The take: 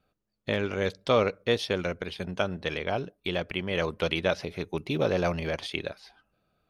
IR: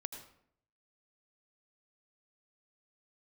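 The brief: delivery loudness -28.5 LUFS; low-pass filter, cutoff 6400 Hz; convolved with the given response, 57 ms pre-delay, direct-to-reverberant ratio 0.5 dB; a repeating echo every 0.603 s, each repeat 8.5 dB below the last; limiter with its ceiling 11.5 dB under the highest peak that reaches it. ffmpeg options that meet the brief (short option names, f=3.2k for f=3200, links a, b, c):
-filter_complex "[0:a]lowpass=6.4k,alimiter=limit=-22dB:level=0:latency=1,aecho=1:1:603|1206|1809|2412:0.376|0.143|0.0543|0.0206,asplit=2[a][b];[1:a]atrim=start_sample=2205,adelay=57[c];[b][c]afir=irnorm=-1:irlink=0,volume=1.5dB[d];[a][d]amix=inputs=2:normalize=0,volume=3dB"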